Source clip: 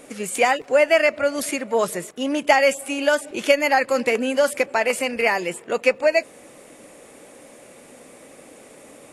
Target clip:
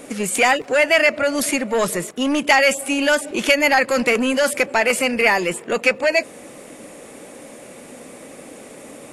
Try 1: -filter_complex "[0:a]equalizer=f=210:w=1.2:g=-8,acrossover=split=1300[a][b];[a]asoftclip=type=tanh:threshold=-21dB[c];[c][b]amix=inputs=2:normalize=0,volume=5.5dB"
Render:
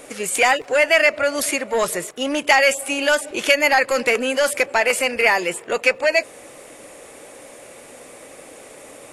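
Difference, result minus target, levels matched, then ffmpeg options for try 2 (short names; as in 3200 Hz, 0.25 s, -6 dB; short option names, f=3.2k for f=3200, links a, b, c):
250 Hz band -6.0 dB
-filter_complex "[0:a]equalizer=f=210:w=1.2:g=3.5,acrossover=split=1300[a][b];[a]asoftclip=type=tanh:threshold=-21dB[c];[c][b]amix=inputs=2:normalize=0,volume=5.5dB"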